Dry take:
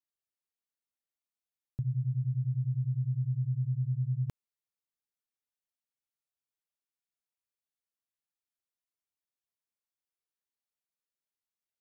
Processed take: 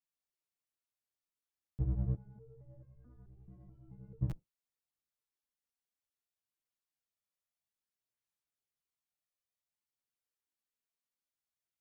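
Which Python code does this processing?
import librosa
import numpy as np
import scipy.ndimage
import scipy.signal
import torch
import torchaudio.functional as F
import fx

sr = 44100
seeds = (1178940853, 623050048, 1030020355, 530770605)

y = fx.octave_divider(x, sr, octaves=1, level_db=-2.0)
y = fx.chorus_voices(y, sr, voices=2, hz=0.3, base_ms=13, depth_ms=4.7, mix_pct=60)
y = fx.resonator_held(y, sr, hz=4.6, low_hz=180.0, high_hz=530.0, at=(2.15, 4.21), fade=0.02)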